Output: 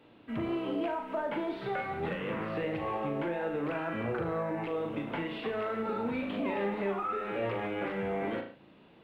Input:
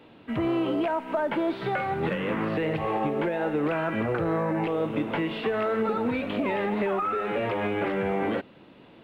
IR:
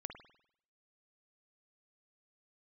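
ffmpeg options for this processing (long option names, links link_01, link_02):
-filter_complex "[1:a]atrim=start_sample=2205,afade=type=out:start_time=0.29:duration=0.01,atrim=end_sample=13230,asetrate=61740,aresample=44100[link_01];[0:a][link_01]afir=irnorm=-1:irlink=0"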